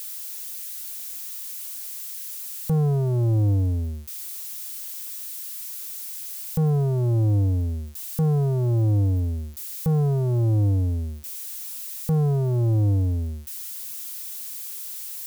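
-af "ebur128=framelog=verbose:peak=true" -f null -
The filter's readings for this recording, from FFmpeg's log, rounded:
Integrated loudness:
  I:         -25.3 LUFS
  Threshold: -35.3 LUFS
Loudness range:
  LRA:         4.6 LU
  Threshold: -44.8 LUFS
  LRA low:   -27.6 LUFS
  LRA high:  -22.9 LUFS
True peak:
  Peak:      -16.4 dBFS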